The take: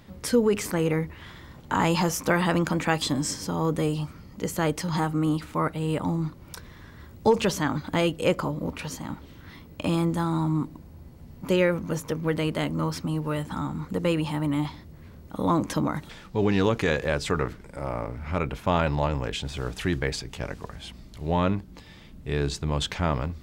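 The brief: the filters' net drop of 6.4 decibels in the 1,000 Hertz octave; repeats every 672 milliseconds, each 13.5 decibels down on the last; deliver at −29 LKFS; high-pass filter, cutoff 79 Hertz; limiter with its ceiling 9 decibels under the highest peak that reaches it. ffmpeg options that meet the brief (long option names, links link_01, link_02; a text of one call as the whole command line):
ffmpeg -i in.wav -af "highpass=79,equalizer=frequency=1000:width_type=o:gain=-8,alimiter=limit=-19dB:level=0:latency=1,aecho=1:1:672|1344:0.211|0.0444,volume=1.5dB" out.wav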